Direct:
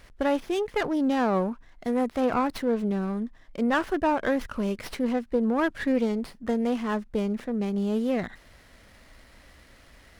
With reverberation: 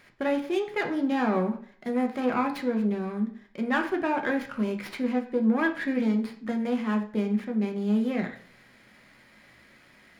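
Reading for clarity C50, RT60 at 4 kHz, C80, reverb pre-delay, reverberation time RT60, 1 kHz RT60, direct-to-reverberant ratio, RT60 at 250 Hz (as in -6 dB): 11.0 dB, 0.45 s, 14.5 dB, 3 ms, 0.50 s, 0.50 s, 3.0 dB, 0.55 s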